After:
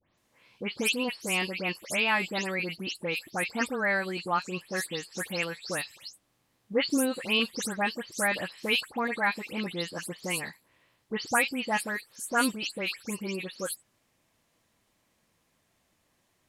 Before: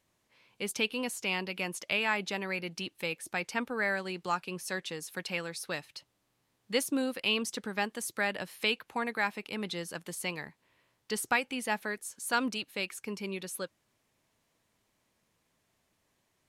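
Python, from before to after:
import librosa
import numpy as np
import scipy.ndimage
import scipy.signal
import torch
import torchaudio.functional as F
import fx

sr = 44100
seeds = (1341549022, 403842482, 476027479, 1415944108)

y = fx.spec_delay(x, sr, highs='late', ms=172)
y = y * librosa.db_to_amplitude(4.0)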